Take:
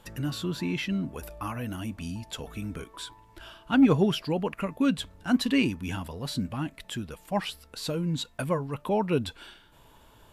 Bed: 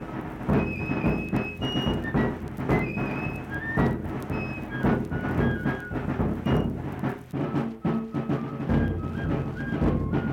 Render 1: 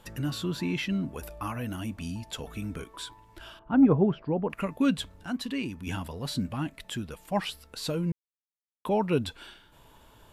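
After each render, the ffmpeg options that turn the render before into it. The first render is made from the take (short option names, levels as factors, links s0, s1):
-filter_complex "[0:a]asettb=1/sr,asplit=3[s0][s1][s2];[s0]atrim=end=3.594[s3];[s1]atrim=start=3.59:end=4.5,asetpts=PTS-STARTPTS,afade=t=in:d=0.004:c=qsin,afade=t=out:st=0.906:d=0.004:c=qsin,lowpass=1100[s4];[s2]atrim=start=4.496[s5];[s3][s4]acrossfade=d=0.004:c1=hsin:c2=qsin[s6];[s6][s5]acrossfade=d=0.004:c1=qsin:c2=hsin,asettb=1/sr,asplit=3[s7][s8][s9];[s7]atrim=end=5.154[s10];[s8]atrim=start=5.15:end=5.87,asetpts=PTS-STARTPTS,afade=t=in:d=0.004:c=qsin,afade=t=out:st=0.716:d=0.004:c=qsin,acompressor=threshold=0.00708:ratio=1.5:attack=3.2:release=140:knee=1:detection=peak[s11];[s9]atrim=start=5.866[s12];[s10][s11]acrossfade=d=0.004:c1=hsin:c2=qsin[s13];[s13][s12]acrossfade=d=0.004:c1=qsin:c2=hsin,asplit=3[s14][s15][s16];[s14]atrim=end=8.12,asetpts=PTS-STARTPTS,afade=t=out:st=8.116:d=0.004:c=hsin[s17];[s15]atrim=start=8.12:end=8.85,asetpts=PTS-STARTPTS,volume=0[s18];[s16]atrim=start=8.85,asetpts=PTS-STARTPTS,afade=t=in:d=0.004:c=hsin[s19];[s17][s18][s19]concat=n=3:v=0:a=1"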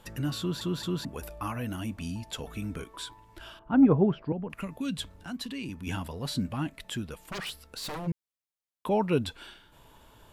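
-filter_complex "[0:a]asettb=1/sr,asplit=3[s0][s1][s2];[s0]atrim=end=4.324[s3];[s1]atrim=start=4.32:end=5.69,asetpts=PTS-STARTPTS,afade=t=in:d=0.004:c=qsin,afade=t=out:st=1.366:d=0.004:c=qsin,acrossover=split=180|3000[s4][s5][s6];[s5]acompressor=threshold=0.01:ratio=2.5:attack=3.2:release=140:knee=2.83:detection=peak[s7];[s4][s7][s6]amix=inputs=3:normalize=0[s8];[s2]atrim=start=5.686[s9];[s3][s8]acrossfade=d=0.004:c1=hsin:c2=qsin[s10];[s10][s9]acrossfade=d=0.004:c1=qsin:c2=hsin,asplit=3[s11][s12][s13];[s11]afade=t=out:st=7.12:d=0.02[s14];[s12]aeval=exprs='0.0282*(abs(mod(val(0)/0.0282+3,4)-2)-1)':c=same,afade=t=in:st=7.12:d=0.02,afade=t=out:st=8.06:d=0.02[s15];[s13]afade=t=in:st=8.06:d=0.02[s16];[s14][s15][s16]amix=inputs=3:normalize=0,asplit=4[s17][s18][s19][s20];[s17]atrim=end=0.612[s21];[s18]atrim=start=0.388:end=0.612[s22];[s19]atrim=start=0.388:end=0.612[s23];[s20]atrim=start=1.048[s24];[s21][s22]acrossfade=d=0.004:c1=hsin:c2=hsin[s25];[s25][s23]acrossfade=d=0.004:c1=hsin:c2=hsin[s26];[s26][s24]acrossfade=d=0.004:c1=hsin:c2=hsin"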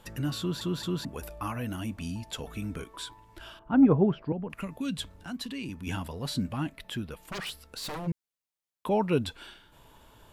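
-filter_complex "[0:a]asettb=1/sr,asplit=3[s0][s1][s2];[s0]atrim=end=6.734[s3];[s1]atrim=start=6.73:end=7.23,asetpts=PTS-STARTPTS,afade=t=in:d=0.004:c=qsin,afade=t=out:st=0.496:d=0.004:c=qsin,equalizer=f=7400:w=1.5:g=-7.5[s4];[s2]atrim=start=7.226[s5];[s3][s4]acrossfade=d=0.004:c1=hsin:c2=qsin[s6];[s6][s5]acrossfade=d=0.004:c1=qsin:c2=hsin"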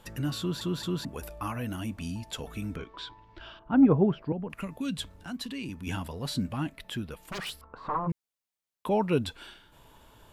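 -filter_complex "[0:a]asettb=1/sr,asplit=3[s0][s1][s2];[s0]atrim=end=2.764[s3];[s1]atrim=start=2.76:end=3.94,asetpts=PTS-STARTPTS,afade=t=in:d=0.004:c=qsin,afade=t=out:st=1.176:d=0.004:c=qsin,lowpass=f=4800:w=0.5412,lowpass=f=4800:w=1.3066[s4];[s2]atrim=start=3.936[s5];[s3][s4]acrossfade=d=0.004:c1=hsin:c2=qsin[s6];[s6][s5]acrossfade=d=0.004:c1=qsin:c2=hsin,asettb=1/sr,asplit=3[s7][s8][s9];[s7]atrim=end=7.614[s10];[s8]atrim=start=7.61:end=8.1,asetpts=PTS-STARTPTS,afade=t=in:d=0.004:c=qsin,afade=t=out:st=0.486:d=0.004:c=qsin,lowpass=f=1100:t=q:w=7.1[s11];[s9]atrim=start=8.096[s12];[s10][s11]acrossfade=d=0.004:c1=hsin:c2=qsin[s13];[s13][s12]acrossfade=d=0.004:c1=qsin:c2=hsin"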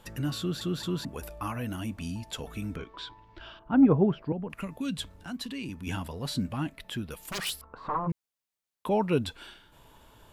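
-filter_complex "[0:a]asettb=1/sr,asplit=3[s0][s1][s2];[s0]atrim=end=0.384[s3];[s1]atrim=start=0.38:end=0.8,asetpts=PTS-STARTPTS,afade=t=in:d=0.004:c=qsin,afade=t=out:st=0.416:d=0.004:c=qsin,asuperstop=centerf=960:order=4:qfactor=5.6[s4];[s2]atrim=start=0.796[s5];[s3][s4]acrossfade=d=0.004:c1=hsin:c2=qsin[s6];[s6][s5]acrossfade=d=0.004:c1=qsin:c2=hsin,asettb=1/sr,asplit=3[s7][s8][s9];[s7]atrim=end=7.104[s10];[s8]atrim=start=7.1:end=7.62,asetpts=PTS-STARTPTS,afade=t=in:d=0.004:c=qsin,afade=t=out:st=0.516:d=0.004:c=qsin,highshelf=f=4000:g=11[s11];[s9]atrim=start=7.616[s12];[s10][s11]acrossfade=d=0.004:c1=hsin:c2=qsin[s13];[s13][s12]acrossfade=d=0.004:c1=qsin:c2=hsin"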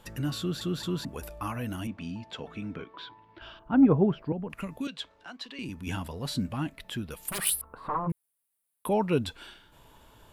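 -filter_complex "[0:a]asettb=1/sr,asplit=3[s0][s1][s2];[s0]atrim=end=1.874[s3];[s1]atrim=start=1.87:end=3.42,asetpts=PTS-STARTPTS,afade=t=in:d=0.004:c=qsin,afade=t=out:st=1.546:d=0.004:c=qsin,highpass=130,lowpass=3500[s4];[s2]atrim=start=3.416[s5];[s3][s4]acrossfade=d=0.004:c1=hsin:c2=qsin[s6];[s6][s5]acrossfade=d=0.004:c1=qsin:c2=hsin,asettb=1/sr,asplit=3[s7][s8][s9];[s7]atrim=end=4.874[s10];[s8]atrim=start=4.87:end=5.59,asetpts=PTS-STARTPTS,afade=t=in:d=0.004:c=qsin,afade=t=out:st=0.716:d=0.004:c=qsin,acrossover=split=370 5900:gain=0.0891 1 0.1[s11][s12][s13];[s11][s12][s13]amix=inputs=3:normalize=0[s14];[s9]atrim=start=5.586[s15];[s10][s14]acrossfade=d=0.004:c1=hsin:c2=qsin[s16];[s16][s15]acrossfade=d=0.004:c1=qsin:c2=hsin,asettb=1/sr,asplit=3[s17][s18][s19];[s17]atrim=end=7.284[s20];[s18]atrim=start=7.28:end=8.93,asetpts=PTS-STARTPTS,afade=t=in:d=0.004:c=qsin,afade=t=out:st=1.646:d=0.004:c=qsin,highshelf=f=7900:t=q:w=3:g=8.5[s21];[s19]atrim=start=8.926[s22];[s20][s21]acrossfade=d=0.004:c1=hsin:c2=qsin[s23];[s23][s22]acrossfade=d=0.004:c1=qsin:c2=hsin"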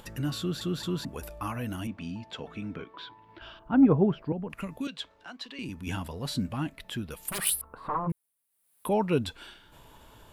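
-af "acompressor=mode=upward:threshold=0.00447:ratio=2.5"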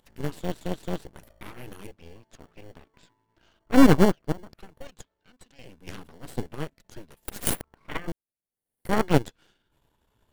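-filter_complex "[0:a]aeval=exprs='0.266*(cos(1*acos(clip(val(0)/0.266,-1,1)))-cos(1*PI/2))+0.0944*(cos(4*acos(clip(val(0)/0.266,-1,1)))-cos(4*PI/2))+0.0422*(cos(7*acos(clip(val(0)/0.266,-1,1)))-cos(7*PI/2))':c=same,asplit=2[s0][s1];[s1]acrusher=samples=35:mix=1:aa=0.000001,volume=0.562[s2];[s0][s2]amix=inputs=2:normalize=0"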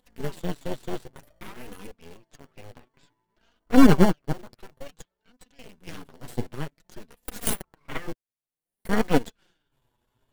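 -filter_complex "[0:a]flanger=delay=4:depth=4.3:regen=13:speed=0.55:shape=sinusoidal,asplit=2[s0][s1];[s1]acrusher=bits=6:mix=0:aa=0.000001,volume=0.422[s2];[s0][s2]amix=inputs=2:normalize=0"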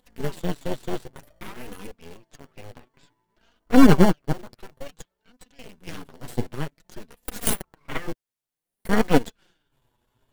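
-af "volume=1.41,alimiter=limit=0.891:level=0:latency=1"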